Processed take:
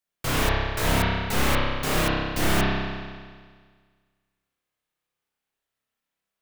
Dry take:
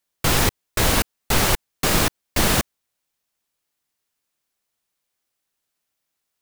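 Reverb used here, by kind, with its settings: spring tank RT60 1.7 s, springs 30 ms, chirp 40 ms, DRR -7 dB; trim -9.5 dB

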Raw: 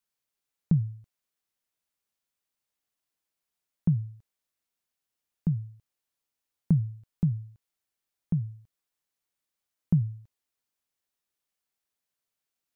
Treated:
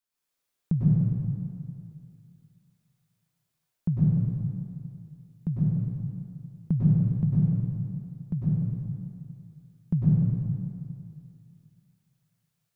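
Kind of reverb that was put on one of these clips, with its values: plate-style reverb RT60 2.4 s, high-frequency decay 0.8×, pre-delay 90 ms, DRR -8 dB; trim -3 dB

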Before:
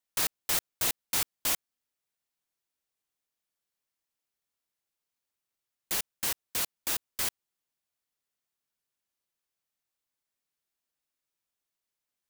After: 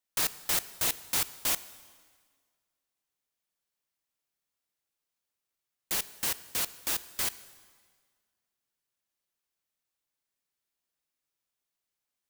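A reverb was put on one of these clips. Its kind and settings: plate-style reverb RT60 1.7 s, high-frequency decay 0.9×, DRR 15 dB

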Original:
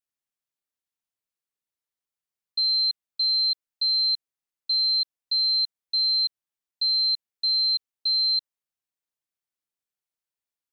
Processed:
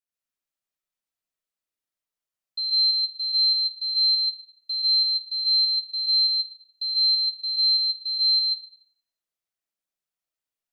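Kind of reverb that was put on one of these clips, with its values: algorithmic reverb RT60 0.75 s, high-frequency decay 0.8×, pre-delay 90 ms, DRR -4 dB; trim -4.5 dB

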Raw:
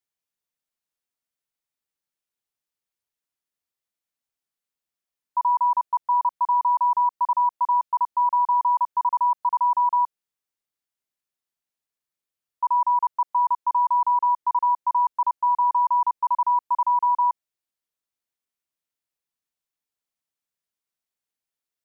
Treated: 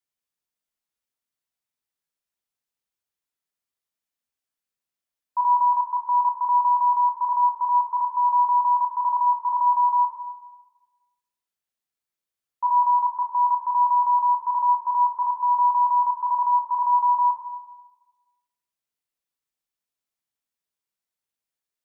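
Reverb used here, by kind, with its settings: plate-style reverb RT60 1.2 s, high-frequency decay 0.9×, pre-delay 0 ms, DRR 2.5 dB; trim -2.5 dB

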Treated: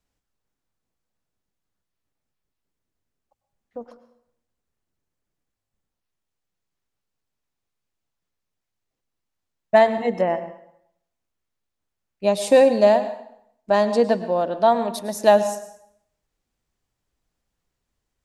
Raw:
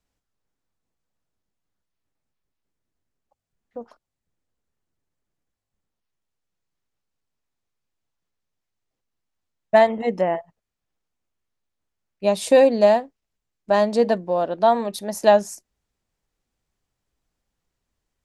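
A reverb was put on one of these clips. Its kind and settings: plate-style reverb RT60 0.71 s, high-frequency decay 0.85×, pre-delay 90 ms, DRR 12 dB

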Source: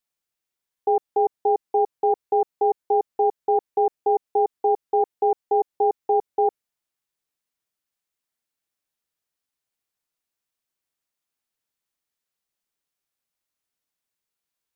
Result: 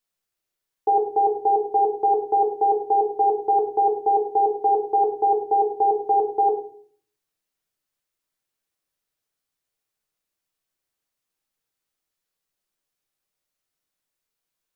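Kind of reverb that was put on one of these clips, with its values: simulated room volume 64 m³, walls mixed, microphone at 0.6 m

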